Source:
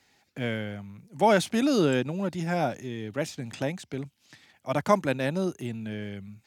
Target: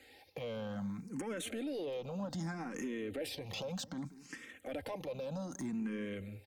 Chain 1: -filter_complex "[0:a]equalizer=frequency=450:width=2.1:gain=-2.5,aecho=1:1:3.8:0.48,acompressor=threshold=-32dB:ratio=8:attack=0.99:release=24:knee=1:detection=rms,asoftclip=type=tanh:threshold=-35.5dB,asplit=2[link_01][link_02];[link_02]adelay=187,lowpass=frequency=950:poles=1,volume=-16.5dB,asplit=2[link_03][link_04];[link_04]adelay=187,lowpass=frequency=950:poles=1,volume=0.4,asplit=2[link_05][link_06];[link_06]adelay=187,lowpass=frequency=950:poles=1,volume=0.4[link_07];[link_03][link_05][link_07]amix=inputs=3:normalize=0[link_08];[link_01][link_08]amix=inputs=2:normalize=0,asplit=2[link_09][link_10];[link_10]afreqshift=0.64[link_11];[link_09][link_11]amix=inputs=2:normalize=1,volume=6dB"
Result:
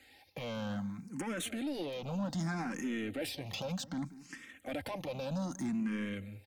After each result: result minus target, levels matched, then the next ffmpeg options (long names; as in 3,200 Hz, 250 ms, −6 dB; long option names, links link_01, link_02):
downward compressor: peak gain reduction −6.5 dB; 500 Hz band −3.5 dB
-filter_complex "[0:a]equalizer=frequency=450:width=2.1:gain=-2.5,aecho=1:1:3.8:0.48,acompressor=threshold=-38.5dB:ratio=8:attack=0.99:release=24:knee=1:detection=rms,asoftclip=type=tanh:threshold=-35.5dB,asplit=2[link_01][link_02];[link_02]adelay=187,lowpass=frequency=950:poles=1,volume=-16.5dB,asplit=2[link_03][link_04];[link_04]adelay=187,lowpass=frequency=950:poles=1,volume=0.4,asplit=2[link_05][link_06];[link_06]adelay=187,lowpass=frequency=950:poles=1,volume=0.4[link_07];[link_03][link_05][link_07]amix=inputs=3:normalize=0[link_08];[link_01][link_08]amix=inputs=2:normalize=0,asplit=2[link_09][link_10];[link_10]afreqshift=0.64[link_11];[link_09][link_11]amix=inputs=2:normalize=1,volume=6dB"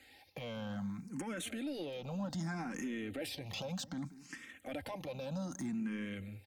500 Hz band −3.5 dB
-filter_complex "[0:a]equalizer=frequency=450:width=2.1:gain=6.5,aecho=1:1:3.8:0.48,acompressor=threshold=-38.5dB:ratio=8:attack=0.99:release=24:knee=1:detection=rms,asoftclip=type=tanh:threshold=-35.5dB,asplit=2[link_01][link_02];[link_02]adelay=187,lowpass=frequency=950:poles=1,volume=-16.5dB,asplit=2[link_03][link_04];[link_04]adelay=187,lowpass=frequency=950:poles=1,volume=0.4,asplit=2[link_05][link_06];[link_06]adelay=187,lowpass=frequency=950:poles=1,volume=0.4[link_07];[link_03][link_05][link_07]amix=inputs=3:normalize=0[link_08];[link_01][link_08]amix=inputs=2:normalize=0,asplit=2[link_09][link_10];[link_10]afreqshift=0.64[link_11];[link_09][link_11]amix=inputs=2:normalize=1,volume=6dB"